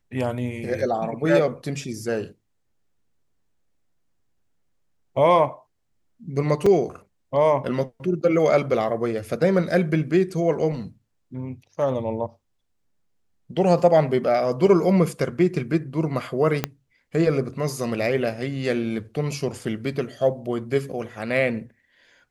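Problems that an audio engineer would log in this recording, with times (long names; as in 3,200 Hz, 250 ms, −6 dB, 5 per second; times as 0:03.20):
0:06.66: drop-out 4.3 ms
0:16.64: click −7 dBFS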